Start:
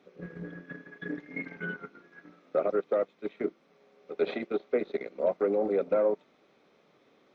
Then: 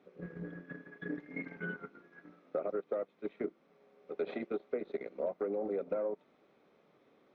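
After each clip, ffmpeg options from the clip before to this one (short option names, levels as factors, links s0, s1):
-af "highshelf=f=3100:g=-10,acompressor=threshold=0.0355:ratio=6,volume=0.75"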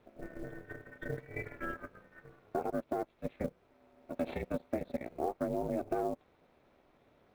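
-af "acrusher=bits=7:mode=log:mix=0:aa=0.000001,aeval=exprs='val(0)*sin(2*PI*160*n/s)':c=same,volume=1.5"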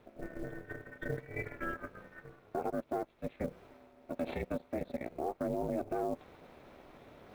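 -af "alimiter=level_in=1.41:limit=0.0631:level=0:latency=1:release=25,volume=0.708,areverse,acompressor=mode=upward:threshold=0.00501:ratio=2.5,areverse,volume=1.26"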